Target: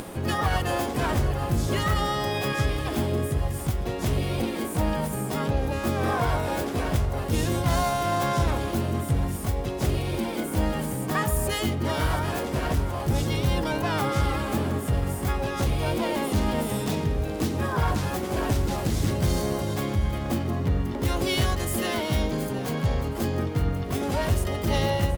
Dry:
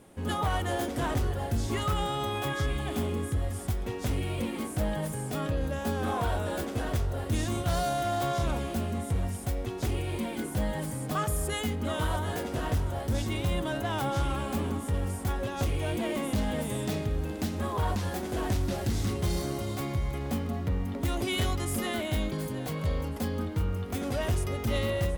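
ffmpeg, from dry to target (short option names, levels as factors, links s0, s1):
-filter_complex "[0:a]asplit=2[s0][s1];[s1]adelay=125,lowpass=f=980:p=1,volume=0.178,asplit=2[s2][s3];[s3]adelay=125,lowpass=f=980:p=1,volume=0.49,asplit=2[s4][s5];[s5]adelay=125,lowpass=f=980:p=1,volume=0.49,asplit=2[s6][s7];[s7]adelay=125,lowpass=f=980:p=1,volume=0.49,asplit=2[s8][s9];[s9]adelay=125,lowpass=f=980:p=1,volume=0.49[s10];[s0][s2][s4][s6][s8][s10]amix=inputs=6:normalize=0,acompressor=mode=upward:threshold=0.0282:ratio=2.5,asplit=2[s11][s12];[s12]asetrate=66075,aresample=44100,atempo=0.66742,volume=0.631[s13];[s11][s13]amix=inputs=2:normalize=0,volume=1.41"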